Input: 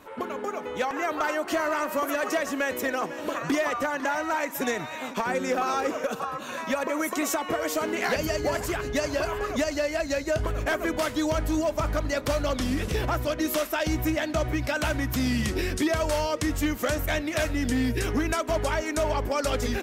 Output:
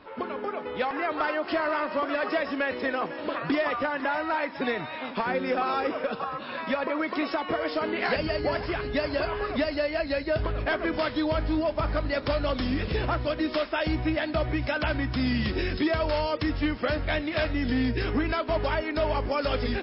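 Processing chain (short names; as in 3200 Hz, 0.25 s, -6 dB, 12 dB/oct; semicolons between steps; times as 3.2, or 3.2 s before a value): MP3 24 kbps 12000 Hz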